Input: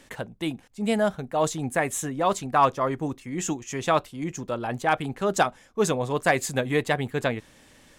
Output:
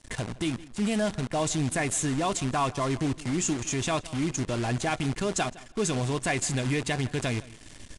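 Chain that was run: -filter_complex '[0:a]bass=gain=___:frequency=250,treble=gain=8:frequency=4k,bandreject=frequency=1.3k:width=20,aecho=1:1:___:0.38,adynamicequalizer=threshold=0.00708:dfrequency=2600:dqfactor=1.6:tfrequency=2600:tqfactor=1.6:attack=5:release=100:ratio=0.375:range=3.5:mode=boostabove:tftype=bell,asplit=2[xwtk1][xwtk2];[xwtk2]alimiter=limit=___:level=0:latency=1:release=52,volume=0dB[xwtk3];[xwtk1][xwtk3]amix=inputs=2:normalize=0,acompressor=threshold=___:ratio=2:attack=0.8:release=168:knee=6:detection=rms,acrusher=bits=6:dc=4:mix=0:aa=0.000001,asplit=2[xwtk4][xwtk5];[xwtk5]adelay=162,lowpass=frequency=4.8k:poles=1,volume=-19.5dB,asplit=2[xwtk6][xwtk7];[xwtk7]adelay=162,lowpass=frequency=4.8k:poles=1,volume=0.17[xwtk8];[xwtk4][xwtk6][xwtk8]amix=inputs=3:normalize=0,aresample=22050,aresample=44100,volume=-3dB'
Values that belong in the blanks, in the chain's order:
13, 2.9, -15dB, -25dB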